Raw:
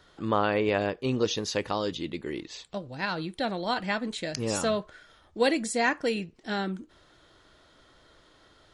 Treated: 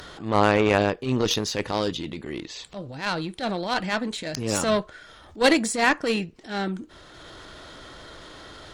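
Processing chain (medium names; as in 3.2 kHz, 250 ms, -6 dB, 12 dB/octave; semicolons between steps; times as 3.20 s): Chebyshev shaper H 2 -17 dB, 7 -22 dB, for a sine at -10.5 dBFS; upward compressor, threshold -38 dBFS; transient shaper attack -10 dB, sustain +4 dB; trim +8.5 dB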